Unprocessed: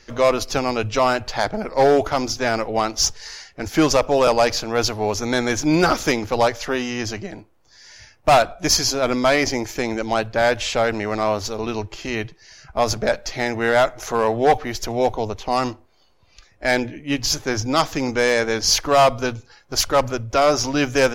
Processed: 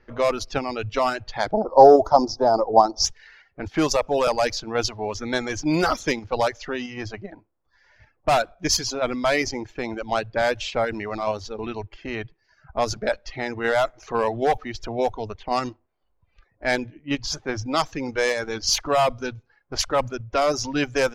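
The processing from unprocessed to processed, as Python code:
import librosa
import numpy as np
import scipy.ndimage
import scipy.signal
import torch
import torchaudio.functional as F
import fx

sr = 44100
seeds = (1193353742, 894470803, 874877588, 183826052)

p1 = fx.env_lowpass(x, sr, base_hz=1600.0, full_db=-12.5)
p2 = fx.curve_eq(p1, sr, hz=(110.0, 510.0, 890.0, 2400.0, 5100.0, 9100.0, 15000.0), db=(0, 9, 13, -27, 5, -12, 3), at=(1.52, 3.05))
p3 = fx.dereverb_blind(p2, sr, rt60_s=0.91)
p4 = fx.level_steps(p3, sr, step_db=10)
p5 = p3 + (p4 * librosa.db_to_amplitude(1.5))
y = p5 * librosa.db_to_amplitude(-8.5)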